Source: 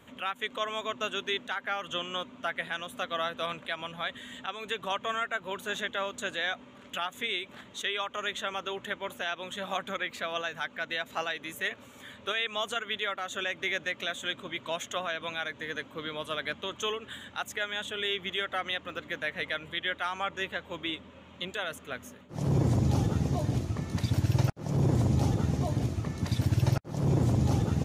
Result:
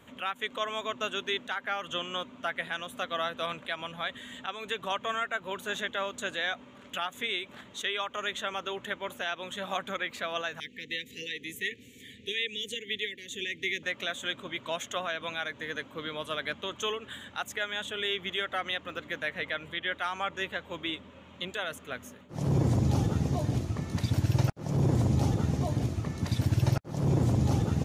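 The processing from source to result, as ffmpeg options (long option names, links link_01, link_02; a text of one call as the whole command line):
ffmpeg -i in.wav -filter_complex "[0:a]asettb=1/sr,asplit=3[link_01][link_02][link_03];[link_01]atrim=end=10.604[link_04];[link_02]atrim=start=10.6:end=13.83,asetpts=PTS-STARTPTS,afade=type=in:duration=0.004:curve=qsin,afade=type=out:start_time=3.226:duration=0.004:curve=qsin,asuperstop=centerf=950:order=20:qfactor=0.72[link_05];[link_03]atrim=start=13.826[link_06];[link_04][link_05]acrossfade=duration=0.004:curve1=hsin:curve2=qsin[link_07];[link_07][link_06]acrossfade=duration=0.004:curve1=qsin:curve2=hsin,asettb=1/sr,asplit=3[link_08][link_09][link_10];[link_08]atrim=end=19.294[link_11];[link_09]atrim=start=19.29:end=19.92,asetpts=PTS-STARTPTS,afade=type=in:duration=0.004:curve=qsin,afade=type=out:start_time=0.626:duration=0.004:curve=qsin,acrossover=split=4100[link_12][link_13];[link_13]acompressor=threshold=-53dB:ratio=4:attack=1:release=60[link_14];[link_12][link_14]amix=inputs=2:normalize=0[link_15];[link_10]atrim=start=19.916[link_16];[link_11][link_15]acrossfade=duration=0.004:curve1=hsin:curve2=qsin[link_17];[link_17][link_16]acrossfade=duration=0.004:curve1=qsin:curve2=hsin" out.wav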